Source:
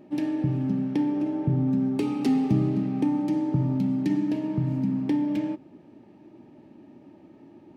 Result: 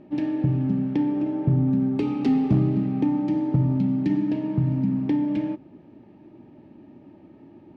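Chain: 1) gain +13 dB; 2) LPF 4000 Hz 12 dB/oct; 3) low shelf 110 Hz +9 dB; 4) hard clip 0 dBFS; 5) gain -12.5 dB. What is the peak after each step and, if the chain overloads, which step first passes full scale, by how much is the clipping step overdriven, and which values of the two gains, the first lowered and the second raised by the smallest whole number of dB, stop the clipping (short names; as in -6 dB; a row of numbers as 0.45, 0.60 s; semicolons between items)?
+1.5, +1.5, +4.0, 0.0, -12.5 dBFS; step 1, 4.0 dB; step 1 +9 dB, step 5 -8.5 dB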